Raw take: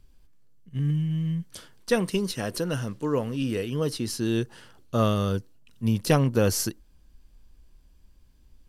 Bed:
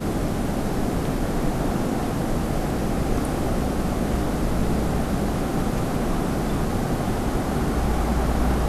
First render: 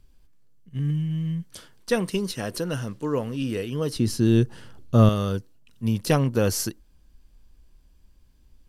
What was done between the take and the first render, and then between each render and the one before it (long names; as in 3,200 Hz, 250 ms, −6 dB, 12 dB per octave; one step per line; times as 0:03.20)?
0:03.96–0:05.09: low-shelf EQ 310 Hz +11.5 dB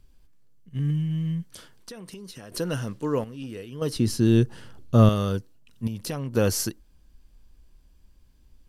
0:01.52–0:02.52: downward compressor 16 to 1, threshold −37 dBFS
0:03.24–0:03.82: noise gate −25 dBFS, range −9 dB
0:05.87–0:06.35: downward compressor 4 to 1, threshold −29 dBFS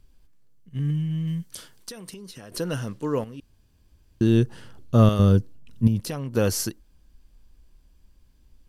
0:01.27–0:02.11: high-shelf EQ 3,700 Hz +8 dB
0:03.40–0:04.21: fill with room tone
0:05.19–0:06.00: low-shelf EQ 430 Hz +11.5 dB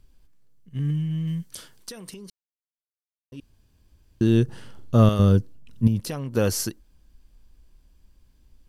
0:02.30–0:03.32: silence
0:04.44–0:04.95: flutter between parallel walls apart 7.6 metres, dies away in 0.33 s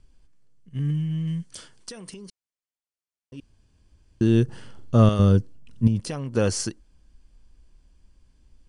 Butterworth low-pass 10,000 Hz 96 dB per octave
notch filter 3,800 Hz, Q 14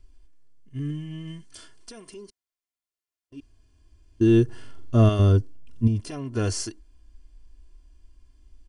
harmonic and percussive parts rebalanced percussive −8 dB
comb filter 2.9 ms, depth 80%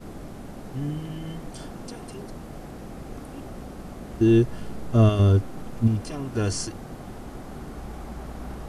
mix in bed −15 dB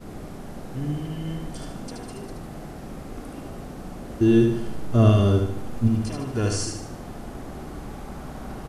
repeating echo 75 ms, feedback 45%, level −4 dB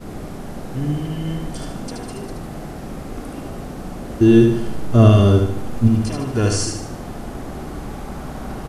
level +6 dB
brickwall limiter −1 dBFS, peak gain reduction 1.5 dB